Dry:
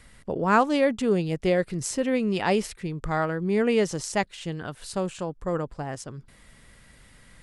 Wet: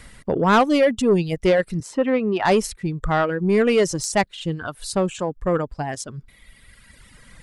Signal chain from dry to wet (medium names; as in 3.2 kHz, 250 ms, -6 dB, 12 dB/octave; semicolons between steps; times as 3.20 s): reverb removal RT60 1.9 s; 1.80–2.45 s: three-band isolator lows -13 dB, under 210 Hz, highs -17 dB, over 2.5 kHz; saturation -18 dBFS, distortion -15 dB; trim +8.5 dB